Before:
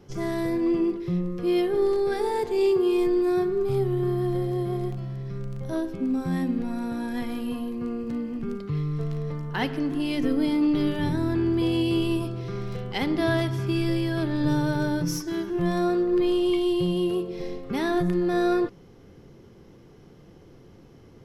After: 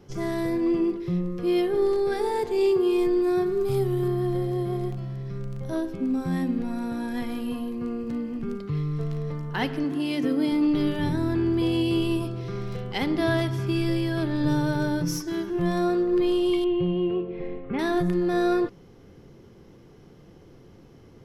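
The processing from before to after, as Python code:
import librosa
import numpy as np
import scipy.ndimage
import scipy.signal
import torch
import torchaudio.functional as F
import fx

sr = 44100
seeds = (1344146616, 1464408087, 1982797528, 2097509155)

y = fx.high_shelf(x, sr, hz=4800.0, db=9.0, at=(3.46, 4.08))
y = fx.highpass(y, sr, hz=110.0, slope=12, at=(9.84, 10.52))
y = fx.cheby1_lowpass(y, sr, hz=2500.0, order=3, at=(16.64, 17.79))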